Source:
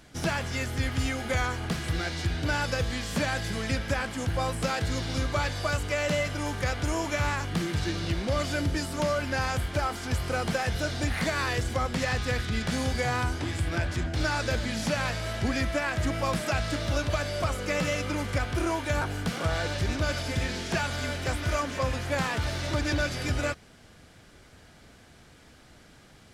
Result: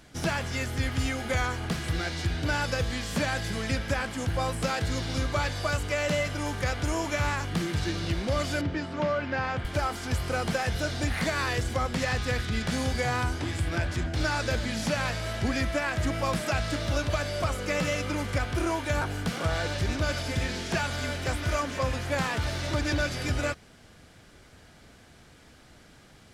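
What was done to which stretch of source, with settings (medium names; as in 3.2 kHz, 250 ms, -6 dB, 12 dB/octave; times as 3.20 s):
8.61–9.65 s: band-pass 100–2900 Hz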